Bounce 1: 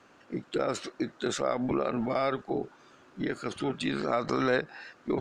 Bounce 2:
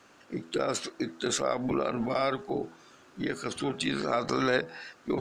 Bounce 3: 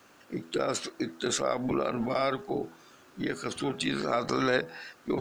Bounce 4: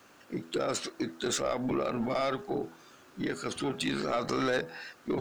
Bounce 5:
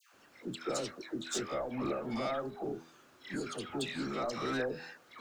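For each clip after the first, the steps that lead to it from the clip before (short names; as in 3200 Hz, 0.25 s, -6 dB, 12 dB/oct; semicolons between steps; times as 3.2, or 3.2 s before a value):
high shelf 4300 Hz +9 dB; de-hum 82.18 Hz, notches 13
bit-crush 11-bit
soft clip -21.5 dBFS, distortion -15 dB
dispersion lows, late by 0.138 s, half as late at 1100 Hz; gain -5 dB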